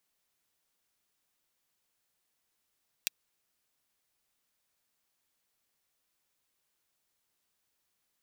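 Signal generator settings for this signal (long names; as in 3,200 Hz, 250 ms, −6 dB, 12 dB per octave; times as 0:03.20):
closed synth hi-hat, high-pass 2,700 Hz, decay 0.02 s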